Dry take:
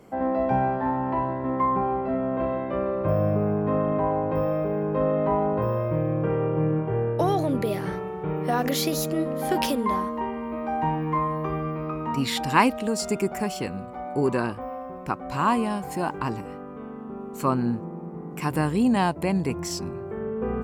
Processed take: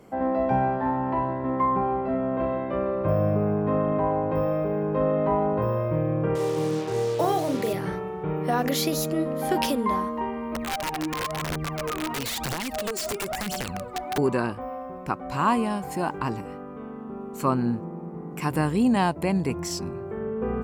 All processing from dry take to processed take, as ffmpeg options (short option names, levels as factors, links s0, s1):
-filter_complex "[0:a]asettb=1/sr,asplit=3[s0][s1][s2];[s0]atrim=end=6.354[s3];[s1]atrim=start=6.35:end=7.73,asetpts=PTS-STARTPTS,afade=t=in:d=0.004:c=qsin,afade=t=out:st=1.376:d=0.004:c=qsin,acrusher=bits=5:mix=0:aa=0.5,highpass=f=240:p=1,asplit=2[s4][s5];[s5]adelay=41,volume=0.447[s6];[s4][s6]amix=inputs=2:normalize=0,atrim=end_sample=60858[s7];[s2]atrim=start=7.726[s8];[s3][s7]acrossfade=d=0.004:c1=hsin:c2=qsin[s9];[s9][s8]acrossfade=d=0.004:c1=qsin:c2=hsin,asettb=1/sr,asplit=3[s10][s11][s12];[s10]atrim=end=10.554[s13];[s11]atrim=start=10.55:end=14.18,asetpts=PTS-STARTPTS,afade=t=in:d=0.004:c=qsin,afade=t=out:st=3.626:d=0.004:c=qsin,aphaser=in_gain=1:out_gain=1:delay=3.2:decay=0.78:speed=1:type=triangular,acompressor=threshold=0.0562:ratio=16:attack=3.2:release=140:knee=1:detection=peak,aeval=exprs='(mod(14.1*val(0)+1,2)-1)/14.1':c=same[s14];[s12]atrim=start=14.176[s15];[s13][s14]acrossfade=d=0.004:c1=hsin:c2=qsin[s16];[s16][s15]acrossfade=d=0.004:c1=qsin:c2=hsin"